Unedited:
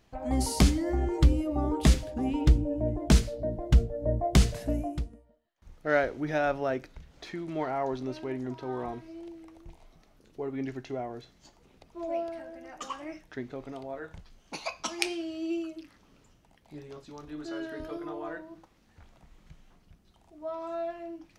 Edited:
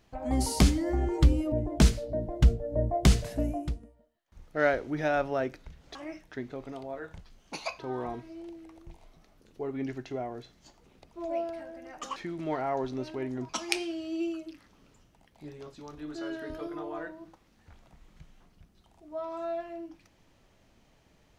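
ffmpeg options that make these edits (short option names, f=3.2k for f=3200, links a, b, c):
-filter_complex "[0:a]asplit=6[a][b][c][d][e][f];[a]atrim=end=1.522[g];[b]atrim=start=2.818:end=7.252[h];[c]atrim=start=12.948:end=14.792[i];[d]atrim=start=8.578:end=12.952[j];[e]atrim=start=7.248:end=8.582[k];[f]atrim=start=14.788[l];[g][h]acrossfade=d=0.004:c1=hsin:c2=hsin[m];[m][i]acrossfade=d=0.004:c1=hsin:c2=hsin[n];[n][j]acrossfade=d=0.004:c1=hsin:c2=hsin[o];[o][k]acrossfade=d=0.004:c1=hsin:c2=hsin[p];[p][l]acrossfade=d=0.004:c1=hsin:c2=hsin"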